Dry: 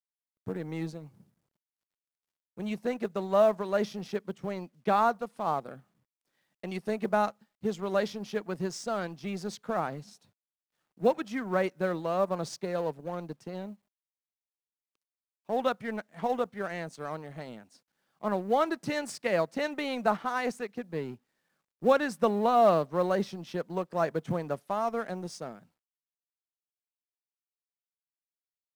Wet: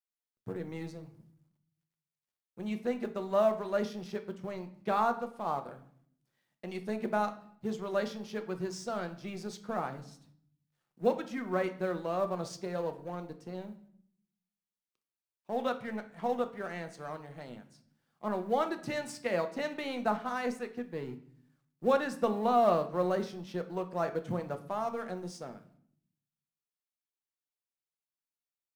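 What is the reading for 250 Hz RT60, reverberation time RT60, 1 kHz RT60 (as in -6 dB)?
0.95 s, 0.60 s, 0.60 s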